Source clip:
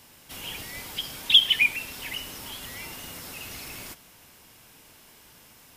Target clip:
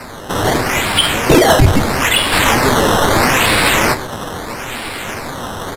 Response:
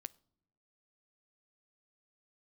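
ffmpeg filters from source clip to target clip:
-filter_complex "[0:a]asetnsamples=nb_out_samples=441:pad=0,asendcmd='2.32 highshelf g 10.5',highshelf=frequency=4900:gain=2,acrusher=samples=13:mix=1:aa=0.000001:lfo=1:lforange=13:lforate=0.77,asoftclip=type=tanh:threshold=-22.5dB,flanger=delay=7.4:depth=3.4:regen=59:speed=1.5:shape=triangular[link_01];[1:a]atrim=start_sample=2205,asetrate=31311,aresample=44100[link_02];[link_01][link_02]afir=irnorm=-1:irlink=0,aresample=32000,aresample=44100,alimiter=level_in=30.5dB:limit=-1dB:release=50:level=0:latency=1,volume=-1dB"

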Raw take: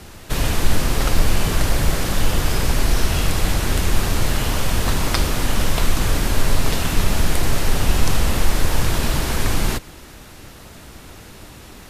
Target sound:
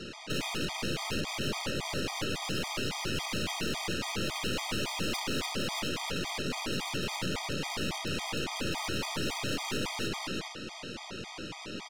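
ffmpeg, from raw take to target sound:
ffmpeg -i in.wav -filter_complex "[0:a]asplit=2[link_01][link_02];[link_02]aecho=0:1:300|495|621.8|704.1|757.7:0.631|0.398|0.251|0.158|0.1[link_03];[link_01][link_03]amix=inputs=2:normalize=0,acompressor=threshold=-19dB:ratio=3,highpass=180,equalizer=frequency=670:width_type=q:width=4:gain=-6,equalizer=frequency=1100:width_type=q:width=4:gain=-4,equalizer=frequency=1700:width_type=q:width=4:gain=-7,equalizer=frequency=2800:width_type=q:width=4:gain=4,lowpass=frequency=5800:width=0.5412,lowpass=frequency=5800:width=1.3066,aeval=exprs='(tanh(63.1*val(0)+0.75)-tanh(0.75))/63.1':channel_layout=same,afftfilt=real='re*gt(sin(2*PI*3.6*pts/sr)*(1-2*mod(floor(b*sr/1024/630),2)),0)':imag='im*gt(sin(2*PI*3.6*pts/sr)*(1-2*mod(floor(b*sr/1024/630),2)),0)':win_size=1024:overlap=0.75,volume=7.5dB" out.wav

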